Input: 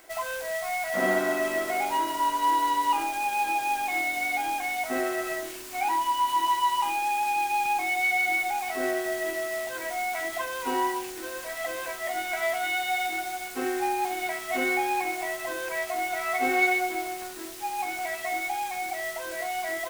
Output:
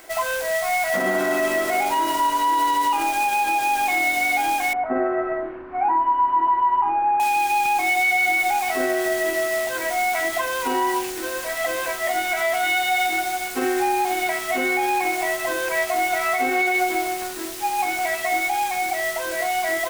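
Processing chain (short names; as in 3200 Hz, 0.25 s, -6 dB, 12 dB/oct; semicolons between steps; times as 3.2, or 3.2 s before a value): 4.73–7.2 LPF 1500 Hz 24 dB/oct; limiter -21 dBFS, peak gain reduction 9 dB; gain +8 dB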